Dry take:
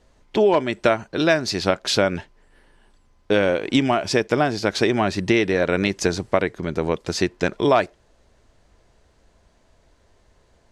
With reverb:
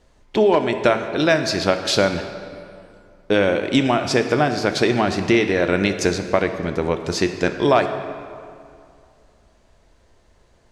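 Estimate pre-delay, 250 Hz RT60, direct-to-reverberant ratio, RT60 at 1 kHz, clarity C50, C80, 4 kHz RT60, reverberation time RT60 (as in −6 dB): 13 ms, 2.4 s, 7.5 dB, 2.4 s, 8.5 dB, 9.5 dB, 1.6 s, 2.4 s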